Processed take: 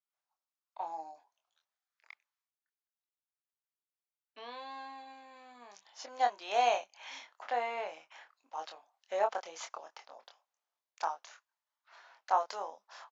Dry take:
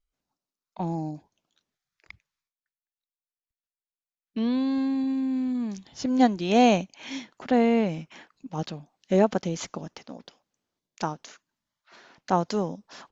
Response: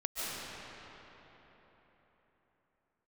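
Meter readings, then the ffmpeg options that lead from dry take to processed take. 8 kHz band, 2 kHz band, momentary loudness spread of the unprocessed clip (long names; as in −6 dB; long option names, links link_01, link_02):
can't be measured, −6.0 dB, 20 LU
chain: -filter_complex "[0:a]highpass=frequency=770:width=0.5412,highpass=frequency=770:width=1.3066,tiltshelf=frequency=1200:gain=6.5,asplit=2[link_01][link_02];[link_02]adelay=25,volume=-5.5dB[link_03];[link_01][link_03]amix=inputs=2:normalize=0,volume=-4dB"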